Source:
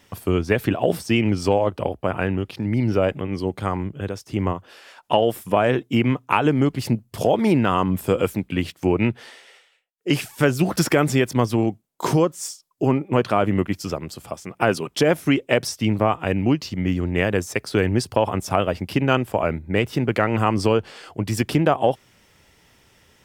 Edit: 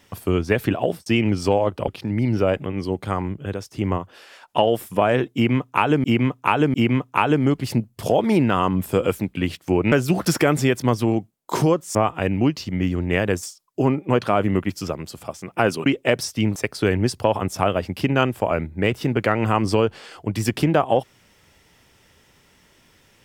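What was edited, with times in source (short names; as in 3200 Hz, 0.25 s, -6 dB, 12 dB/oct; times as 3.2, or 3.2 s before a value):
0.81–1.06 fade out
1.88–2.43 cut
5.89–6.59 loop, 3 plays
9.07–10.43 cut
14.89–15.3 cut
16–17.48 move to 12.46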